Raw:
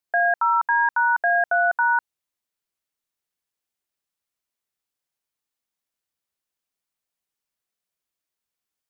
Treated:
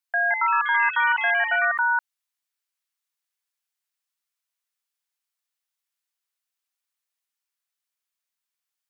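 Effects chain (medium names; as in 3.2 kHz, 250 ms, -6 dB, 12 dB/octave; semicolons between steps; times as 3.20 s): high-pass 1 kHz 12 dB/octave; ever faster or slower copies 197 ms, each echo +4 st, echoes 3, each echo -6 dB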